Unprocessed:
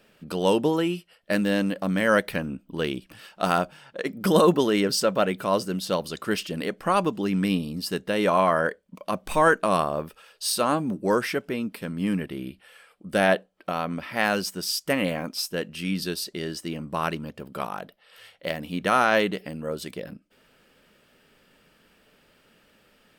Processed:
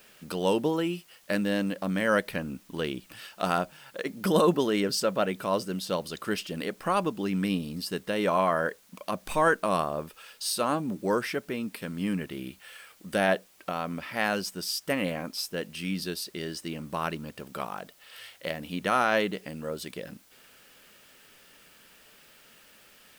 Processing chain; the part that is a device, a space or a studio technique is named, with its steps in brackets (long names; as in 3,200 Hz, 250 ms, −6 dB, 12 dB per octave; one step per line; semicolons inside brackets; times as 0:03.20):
noise-reduction cassette on a plain deck (one half of a high-frequency compander encoder only; tape wow and flutter 12 cents; white noise bed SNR 30 dB)
level −4 dB